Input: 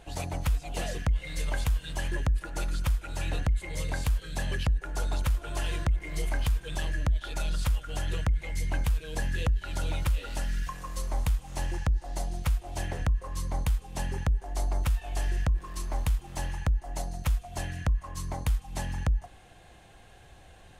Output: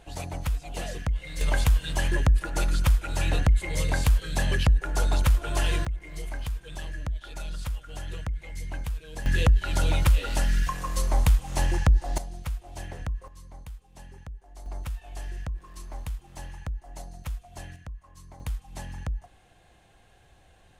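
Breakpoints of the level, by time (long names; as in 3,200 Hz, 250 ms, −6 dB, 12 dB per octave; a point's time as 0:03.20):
−1 dB
from 0:01.41 +6 dB
from 0:05.85 −5 dB
from 0:09.26 +7 dB
from 0:12.18 −5 dB
from 0:13.28 −14.5 dB
from 0:14.66 −7 dB
from 0:17.76 −13.5 dB
from 0:18.40 −5 dB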